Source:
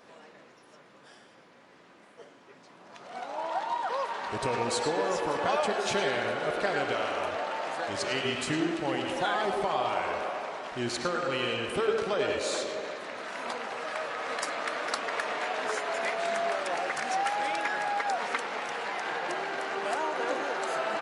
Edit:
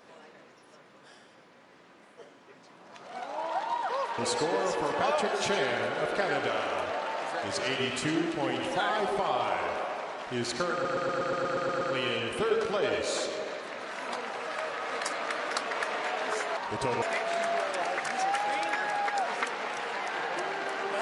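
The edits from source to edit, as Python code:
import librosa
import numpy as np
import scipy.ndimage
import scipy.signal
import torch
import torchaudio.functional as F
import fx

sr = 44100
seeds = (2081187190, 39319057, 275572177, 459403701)

y = fx.edit(x, sr, fx.move(start_s=4.18, length_s=0.45, to_s=15.94),
    fx.stutter(start_s=11.18, slice_s=0.12, count=10), tone=tone)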